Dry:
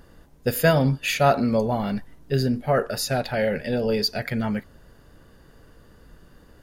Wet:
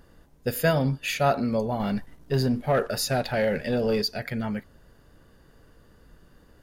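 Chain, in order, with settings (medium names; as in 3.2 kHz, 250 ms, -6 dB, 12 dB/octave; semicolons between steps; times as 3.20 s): 1.80–4.02 s: waveshaping leveller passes 1; trim -4 dB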